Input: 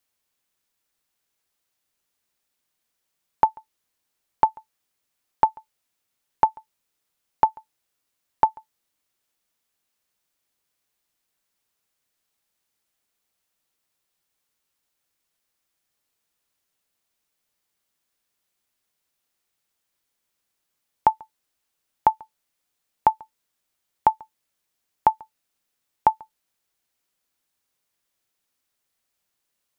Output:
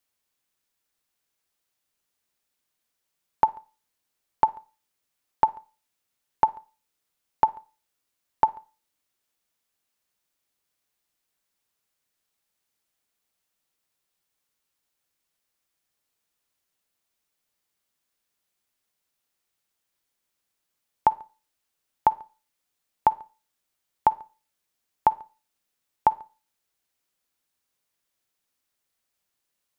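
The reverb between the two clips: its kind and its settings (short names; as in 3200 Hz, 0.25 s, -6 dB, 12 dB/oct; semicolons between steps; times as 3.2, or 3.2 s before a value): Schroeder reverb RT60 0.35 s, DRR 20 dB; gain -2 dB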